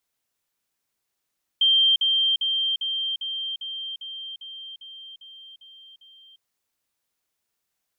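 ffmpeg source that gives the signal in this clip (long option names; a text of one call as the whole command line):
ffmpeg -f lavfi -i "aevalsrc='pow(10,(-15-3*floor(t/0.4))/20)*sin(2*PI*3160*t)*clip(min(mod(t,0.4),0.35-mod(t,0.4))/0.005,0,1)':duration=4.8:sample_rate=44100" out.wav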